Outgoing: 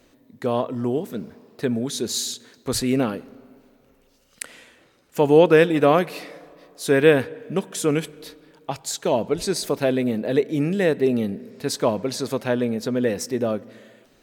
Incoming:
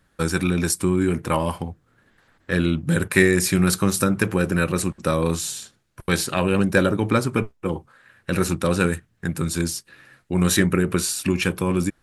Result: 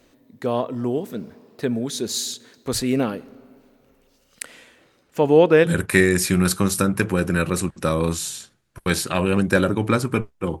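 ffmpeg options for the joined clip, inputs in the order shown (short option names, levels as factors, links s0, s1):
-filter_complex "[0:a]asettb=1/sr,asplit=3[s0][s1][s2];[s0]atrim=end=5.034[s3];[s1]atrim=start=5.03:end=5.72,asetpts=PTS-STARTPTS,afade=t=in:d=0.004:c=qsin,afade=t=out:st=0.686:d=0.004:c=qsin,highshelf=f=5600:g=-7.5[s4];[s2]atrim=start=5.716[s5];[s3][s4]acrossfade=d=0.004:c1=hsin:c2=qsin[s6];[s6][s5]acrossfade=d=0.004:c1=qsin:c2=hsin,apad=whole_dur=10.6,atrim=end=10.6,atrim=end=5.72,asetpts=PTS-STARTPTS[s7];[1:a]atrim=start=2.84:end=7.82,asetpts=PTS-STARTPTS[s8];[s7][s8]acrossfade=d=0.1:c1=tri:c2=tri"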